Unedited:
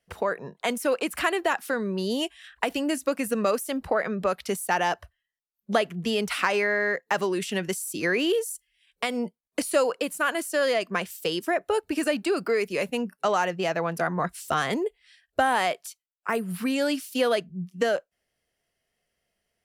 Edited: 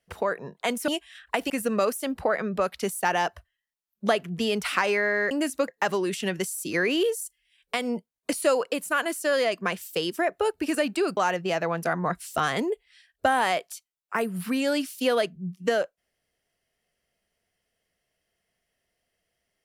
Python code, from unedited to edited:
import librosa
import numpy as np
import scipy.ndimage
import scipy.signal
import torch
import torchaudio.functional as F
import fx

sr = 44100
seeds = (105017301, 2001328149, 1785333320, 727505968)

y = fx.edit(x, sr, fx.cut(start_s=0.88, length_s=1.29),
    fx.move(start_s=2.79, length_s=0.37, to_s=6.97),
    fx.cut(start_s=12.46, length_s=0.85), tone=tone)